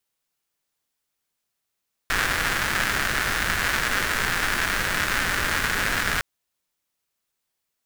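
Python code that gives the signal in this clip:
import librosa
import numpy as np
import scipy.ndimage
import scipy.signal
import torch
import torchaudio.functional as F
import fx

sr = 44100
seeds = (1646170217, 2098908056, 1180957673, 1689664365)

y = fx.rain(sr, seeds[0], length_s=4.11, drops_per_s=260.0, hz=1600.0, bed_db=-4.5)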